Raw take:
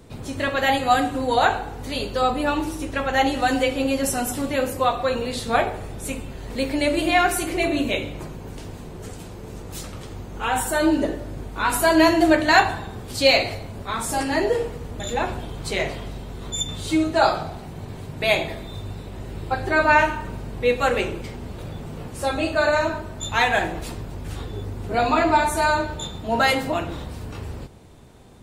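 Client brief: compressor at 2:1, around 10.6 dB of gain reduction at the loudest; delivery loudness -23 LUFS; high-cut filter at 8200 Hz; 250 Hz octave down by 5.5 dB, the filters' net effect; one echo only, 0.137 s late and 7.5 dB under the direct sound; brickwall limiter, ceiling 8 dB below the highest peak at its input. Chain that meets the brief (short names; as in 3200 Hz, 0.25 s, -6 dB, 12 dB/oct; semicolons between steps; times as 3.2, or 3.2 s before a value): LPF 8200 Hz; bell 250 Hz -7.5 dB; compressor 2:1, threshold -32 dBFS; limiter -21.5 dBFS; echo 0.137 s -7.5 dB; gain +9.5 dB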